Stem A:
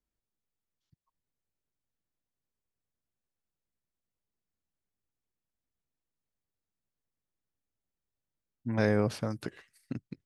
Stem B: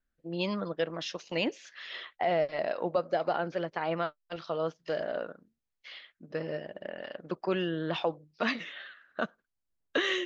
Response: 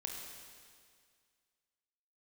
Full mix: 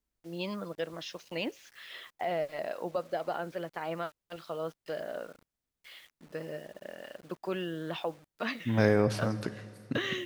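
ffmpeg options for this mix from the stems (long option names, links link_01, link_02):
-filter_complex "[0:a]volume=-0.5dB,asplit=2[link_01][link_02];[link_02]volume=-5.5dB[link_03];[1:a]acrusher=bits=8:mix=0:aa=0.000001,volume=-4.5dB[link_04];[2:a]atrim=start_sample=2205[link_05];[link_03][link_05]afir=irnorm=-1:irlink=0[link_06];[link_01][link_04][link_06]amix=inputs=3:normalize=0"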